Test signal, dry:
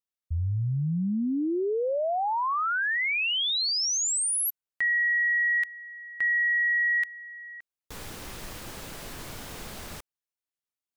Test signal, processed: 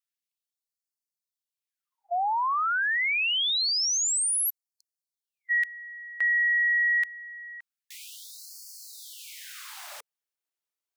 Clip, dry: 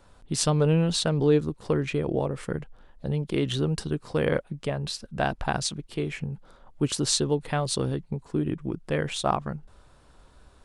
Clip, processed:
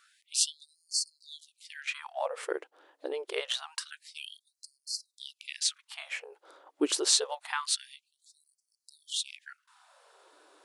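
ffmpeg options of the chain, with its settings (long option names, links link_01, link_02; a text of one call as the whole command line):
ffmpeg -i in.wav -af "afftfilt=real='re*gte(b*sr/1024,270*pow(4300/270,0.5+0.5*sin(2*PI*0.26*pts/sr)))':imag='im*gte(b*sr/1024,270*pow(4300/270,0.5+0.5*sin(2*PI*0.26*pts/sr)))':win_size=1024:overlap=0.75,volume=1dB" out.wav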